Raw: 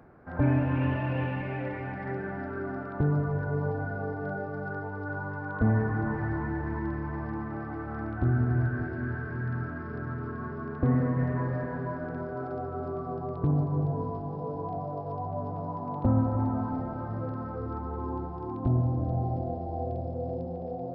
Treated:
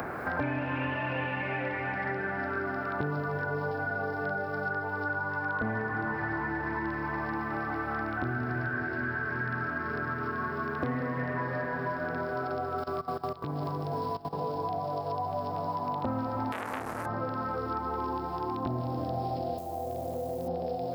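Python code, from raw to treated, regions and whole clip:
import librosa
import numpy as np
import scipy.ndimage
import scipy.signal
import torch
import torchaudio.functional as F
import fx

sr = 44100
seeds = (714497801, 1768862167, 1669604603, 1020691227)

y = fx.chain(x, sr, fx.high_shelf(hz=2200.0, db=10.0),
    fx.level_steps(step_db=17), at=(12.78, 14.33))
y = fx.chain(y, sr, fx.cvsd(bps=64000),
    fx.transformer_sat(knee_hz=1300.0), at=(16.52, 17.06))
y = fx.chain(y, sr, fx.high_shelf(hz=2100.0, db=2.5),
    fx.level_steps(step_db=20),
    fx.quant_companded(bits=8), at=(19.58, 20.48))
y = fx.tilt_eq(y, sr, slope=4.0)
y = fx.band_squash(y, sr, depth_pct=100)
y = y * librosa.db_to_amplitude(4.0)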